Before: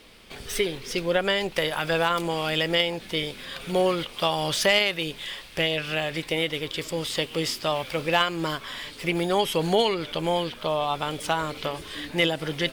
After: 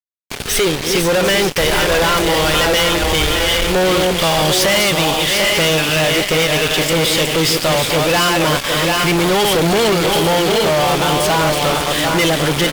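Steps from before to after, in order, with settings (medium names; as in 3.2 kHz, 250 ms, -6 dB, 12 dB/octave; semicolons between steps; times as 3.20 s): backward echo that repeats 393 ms, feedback 43%, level -7 dB; 1.60–3.75 s: resonant low shelf 110 Hz +14 dB, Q 3; delay 745 ms -10 dB; fuzz box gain 37 dB, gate -37 dBFS; trim +1 dB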